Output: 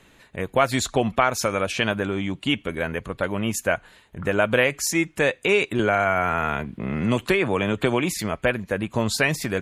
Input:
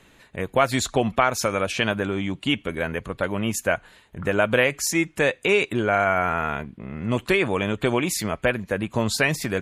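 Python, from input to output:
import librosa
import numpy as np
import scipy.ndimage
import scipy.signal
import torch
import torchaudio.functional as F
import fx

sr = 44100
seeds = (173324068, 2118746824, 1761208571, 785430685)

y = fx.band_squash(x, sr, depth_pct=70, at=(5.79, 8.19))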